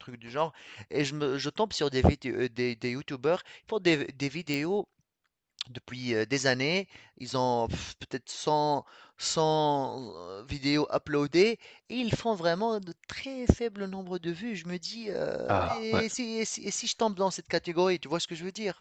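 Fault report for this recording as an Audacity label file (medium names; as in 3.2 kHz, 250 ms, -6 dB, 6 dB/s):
4.540000	4.540000	pop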